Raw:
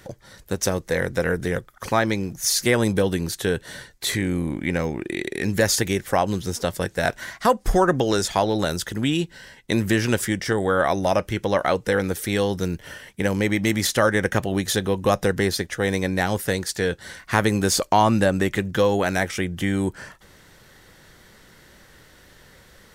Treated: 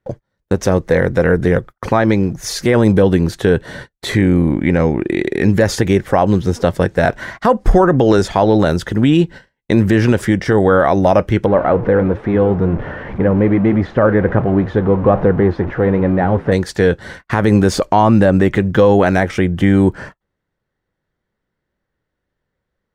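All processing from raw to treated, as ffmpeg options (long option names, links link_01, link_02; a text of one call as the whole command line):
ffmpeg -i in.wav -filter_complex "[0:a]asettb=1/sr,asplit=3[link_01][link_02][link_03];[link_01]atrim=end=11.464[link_04];[link_02]atrim=start=11.46:end=16.52,asetpts=PTS-STARTPTS,afade=type=in:duration=0.004:curve=qsin,afade=type=out:start_time=5.056:duration=0.004:curve=qsin,aeval=exprs='val(0)+0.5*0.0631*sgn(val(0))':channel_layout=same,lowpass=1500,flanger=delay=3.5:depth=6.3:regen=-84:speed=1.3:shape=triangular[link_05];[link_03]atrim=start=16.516[link_06];[link_04][link_05]acrossfade=duration=0.004:curve1=hsin:curve2=qsin[link_07];[link_07][link_06]acrossfade=duration=0.004:curve1=qsin:curve2=hsin,agate=range=-35dB:threshold=-39dB:ratio=16:detection=peak,lowpass=frequency=1100:poles=1,alimiter=level_in=13dB:limit=-1dB:release=50:level=0:latency=1,volume=-1dB" out.wav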